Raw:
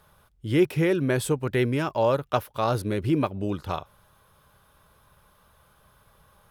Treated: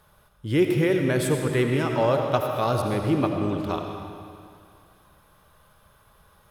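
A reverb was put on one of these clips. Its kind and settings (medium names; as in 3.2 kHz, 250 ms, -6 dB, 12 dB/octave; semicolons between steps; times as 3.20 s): algorithmic reverb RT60 2.3 s, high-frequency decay 0.9×, pre-delay 45 ms, DRR 3 dB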